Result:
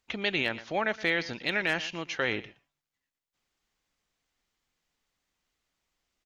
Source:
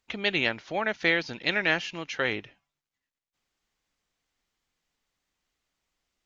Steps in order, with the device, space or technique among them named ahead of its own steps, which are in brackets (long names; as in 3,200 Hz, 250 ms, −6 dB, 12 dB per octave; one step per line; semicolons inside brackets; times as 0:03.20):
single-tap delay 118 ms −19.5 dB
clipper into limiter (hard clipping −12.5 dBFS, distortion −30 dB; brickwall limiter −16.5 dBFS, peak gain reduction 4 dB)